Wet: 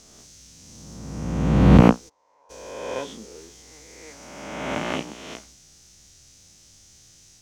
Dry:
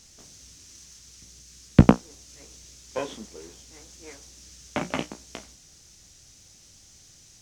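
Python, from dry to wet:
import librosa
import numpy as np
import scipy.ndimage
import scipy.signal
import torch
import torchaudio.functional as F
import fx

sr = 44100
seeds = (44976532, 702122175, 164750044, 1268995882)

y = fx.spec_swells(x, sr, rise_s=1.59)
y = fx.bandpass_q(y, sr, hz=920.0, q=5.3, at=(2.08, 2.49), fade=0.02)
y = F.gain(torch.from_numpy(y), -2.5).numpy()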